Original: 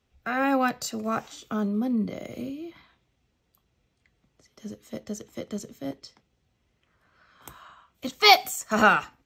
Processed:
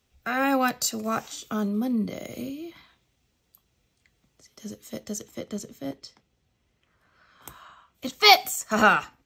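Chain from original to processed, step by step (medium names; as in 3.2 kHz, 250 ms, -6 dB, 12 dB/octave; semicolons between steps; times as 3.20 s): treble shelf 4.3 kHz +10.5 dB, from 5.31 s +3 dB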